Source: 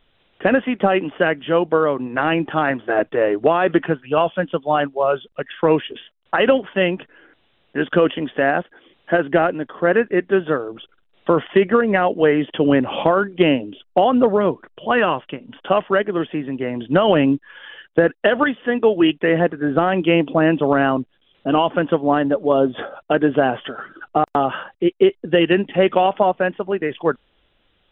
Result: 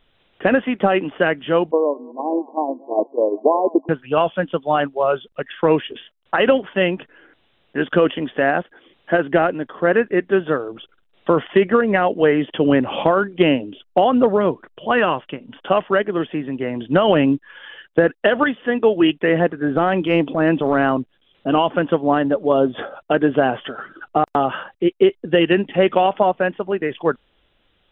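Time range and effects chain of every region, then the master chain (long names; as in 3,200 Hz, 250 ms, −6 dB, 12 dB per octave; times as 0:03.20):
0:01.71–0:03.89: feedback delay that plays each chunk backwards 211 ms, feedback 41%, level −13 dB + noise gate −19 dBFS, range −11 dB + linear-phase brick-wall band-pass 210–1,100 Hz
0:19.75–0:20.94: notch filter 2,800 Hz, Q 19 + transient designer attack −7 dB, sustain +2 dB
whole clip: no processing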